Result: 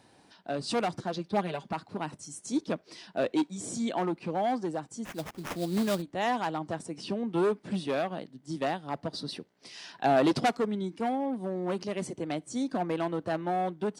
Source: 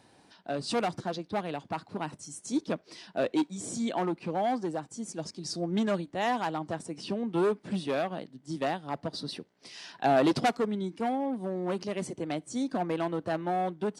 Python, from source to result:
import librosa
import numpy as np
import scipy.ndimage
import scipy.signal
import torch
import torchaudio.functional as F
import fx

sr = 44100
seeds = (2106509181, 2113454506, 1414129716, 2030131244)

y = fx.comb(x, sr, ms=5.1, depth=0.8, at=(1.16, 1.73))
y = fx.sample_hold(y, sr, seeds[0], rate_hz=4300.0, jitter_pct=20, at=(5.04, 6.01), fade=0.02)